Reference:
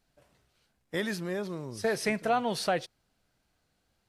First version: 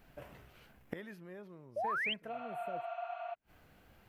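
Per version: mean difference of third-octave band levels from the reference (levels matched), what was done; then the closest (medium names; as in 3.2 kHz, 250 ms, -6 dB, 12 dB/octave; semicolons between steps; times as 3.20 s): 9.5 dB: spectral replace 2.35–3.31 s, 640–7000 Hz before; high-order bell 6.1 kHz -11.5 dB; inverted gate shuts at -35 dBFS, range -29 dB; painted sound rise, 1.76–2.14 s, 540–3300 Hz -48 dBFS; trim +13 dB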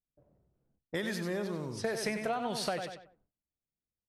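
4.5 dB: on a send: feedback delay 94 ms, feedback 32%, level -8.5 dB; on the sum: gate with hold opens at -60 dBFS; compression, threshold -30 dBFS, peak gain reduction 8.5 dB; level-controlled noise filter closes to 410 Hz, open at -34 dBFS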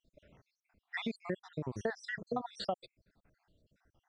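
14.0 dB: random holes in the spectrogram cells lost 72%; steep low-pass 8.2 kHz; tone controls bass +2 dB, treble -14 dB; compression 5:1, threshold -39 dBFS, peak gain reduction 13 dB; trim +5.5 dB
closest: second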